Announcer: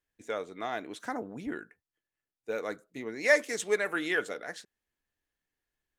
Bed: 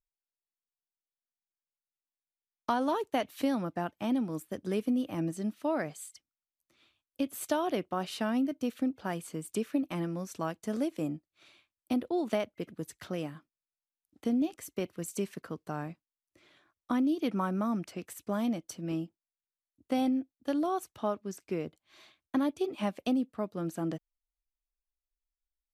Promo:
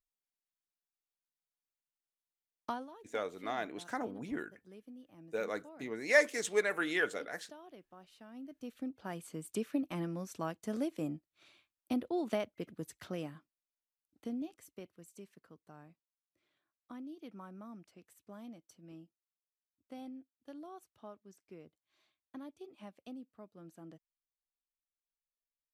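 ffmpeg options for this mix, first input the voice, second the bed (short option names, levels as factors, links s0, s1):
-filter_complex "[0:a]adelay=2850,volume=0.75[s0];[1:a]volume=5.31,afade=t=out:st=2.59:d=0.29:silence=0.11885,afade=t=in:st=8.3:d=1.26:silence=0.112202,afade=t=out:st=12.99:d=2.08:silence=0.188365[s1];[s0][s1]amix=inputs=2:normalize=0"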